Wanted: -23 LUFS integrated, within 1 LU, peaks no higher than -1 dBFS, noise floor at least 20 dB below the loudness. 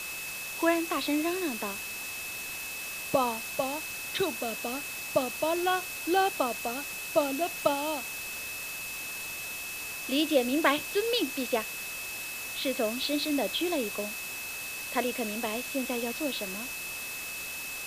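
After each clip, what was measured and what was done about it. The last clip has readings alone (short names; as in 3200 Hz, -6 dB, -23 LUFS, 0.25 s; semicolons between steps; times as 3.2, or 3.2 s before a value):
steady tone 2600 Hz; tone level -38 dBFS; noise floor -38 dBFS; noise floor target -51 dBFS; loudness -30.5 LUFS; peak -9.0 dBFS; loudness target -23.0 LUFS
-> notch 2600 Hz, Q 30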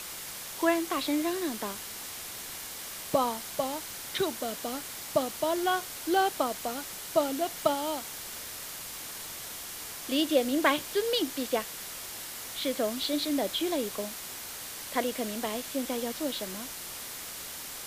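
steady tone none; noise floor -41 dBFS; noise floor target -52 dBFS
-> denoiser 11 dB, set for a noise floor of -41 dBFS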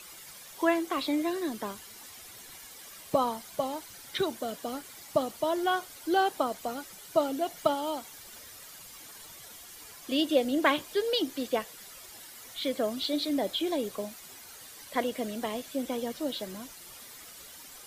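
noise floor -49 dBFS; noise floor target -51 dBFS
-> denoiser 6 dB, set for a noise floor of -49 dBFS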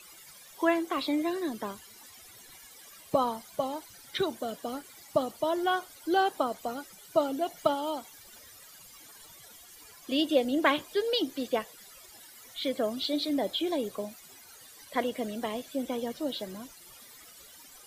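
noise floor -52 dBFS; loudness -31.0 LUFS; peak -9.5 dBFS; loudness target -23.0 LUFS
-> gain +8 dB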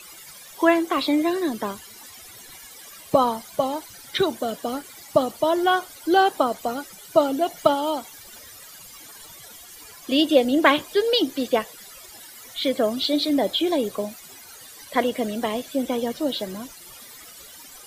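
loudness -23.0 LUFS; peak -1.5 dBFS; noise floor -44 dBFS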